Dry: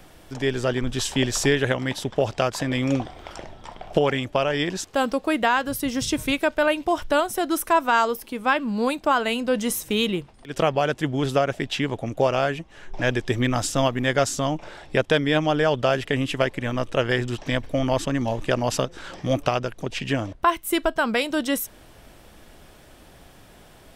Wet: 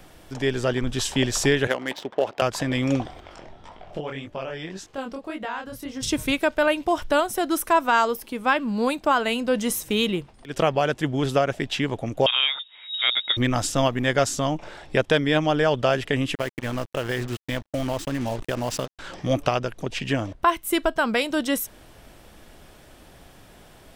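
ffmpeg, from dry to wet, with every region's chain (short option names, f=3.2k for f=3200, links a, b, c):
-filter_complex "[0:a]asettb=1/sr,asplit=3[a][b][c];[a]atrim=end=1.674[d];[b]atrim=start=1.67:end=2.42,asetpts=PTS-STARTPTS,afade=t=in:d=0.004:c=qsin,afade=t=out:st=0.746:d=0.004:c=qsin,highpass=330,adynamicsmooth=sensitivity=4.5:basefreq=1.6k[e];[c]atrim=start=2.416[f];[d][e]acrossfade=d=0.004:c1=hsin:c2=qsin[g];[g][f]acrossfade=d=0.004:c1=qsin:c2=hsin,asettb=1/sr,asplit=3[h][i][j];[h]atrim=end=3.204[k];[i]atrim=start=3.2:end=6.03,asetpts=PTS-STARTPTS,afade=t=in:d=0.004:c=qsin,afade=t=out:st=2.826:d=0.004:c=qsin,highshelf=f=7.2k:g=-9,acompressor=threshold=-37dB:ratio=1.5:attack=3.2:release=140:knee=1:detection=peak,flanger=delay=19:depth=7.5:speed=1.8[l];[j]atrim=start=6.026[m];[k][l]acrossfade=d=0.004:c1=hsin:c2=qsin[n];[n][m]acrossfade=d=0.004:c1=qsin:c2=hsin,asettb=1/sr,asplit=3[o][p][q];[o]atrim=end=12.264[r];[p]atrim=start=12.26:end=13.37,asetpts=PTS-STARTPTS,afade=t=in:d=0.004:c=qsin,afade=t=out:st=1.106:d=0.004:c=qsin,adynamicsmooth=sensitivity=5.5:basefreq=2k,lowpass=f=3.2k:t=q:w=0.5098,lowpass=f=3.2k:t=q:w=0.6013,lowpass=f=3.2k:t=q:w=0.9,lowpass=f=3.2k:t=q:w=2.563,afreqshift=-3800[s];[q]atrim=start=13.366[t];[r][s]acrossfade=d=0.004:c1=hsin:c2=qsin[u];[u][t]acrossfade=d=0.004:c1=qsin:c2=hsin,asettb=1/sr,asplit=3[v][w][x];[v]atrim=end=16.354[y];[w]atrim=start=16.35:end=18.99,asetpts=PTS-STARTPTS,afade=t=in:d=0.004:c=qsin,afade=t=out:st=2.636:d=0.004:c=qsin,agate=range=-33dB:threshold=-26dB:ratio=3:release=100:detection=peak,acompressor=threshold=-23dB:ratio=3:attack=3.2:release=140:knee=1:detection=peak,acrusher=bits=5:mix=0:aa=0.5[z];[x]atrim=start=18.986[aa];[y][z]acrossfade=d=0.004:c1=hsin:c2=qsin[ab];[ab][aa]acrossfade=d=0.004:c1=qsin:c2=hsin"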